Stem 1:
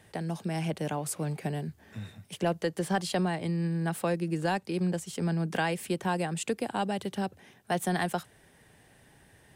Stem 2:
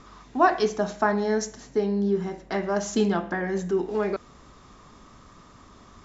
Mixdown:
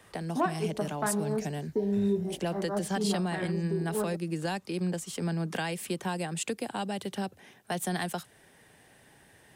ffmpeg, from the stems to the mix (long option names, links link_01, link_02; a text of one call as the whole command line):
ffmpeg -i stem1.wav -i stem2.wav -filter_complex "[0:a]volume=2dB,asplit=2[link_01][link_02];[1:a]afwtdn=0.0316,volume=2.5dB[link_03];[link_02]apad=whole_len=266505[link_04];[link_03][link_04]sidechaincompress=threshold=-33dB:ratio=8:attack=35:release=127[link_05];[link_01][link_05]amix=inputs=2:normalize=0,lowshelf=frequency=140:gain=-9,acrossover=split=240|3000[link_06][link_07][link_08];[link_07]acompressor=threshold=-36dB:ratio=2[link_09];[link_06][link_09][link_08]amix=inputs=3:normalize=0" out.wav